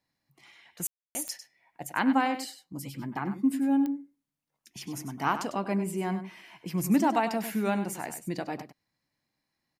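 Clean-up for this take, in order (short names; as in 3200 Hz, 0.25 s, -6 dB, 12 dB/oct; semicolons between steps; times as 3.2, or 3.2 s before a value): de-click; room tone fill 0.87–1.15; inverse comb 99 ms -11 dB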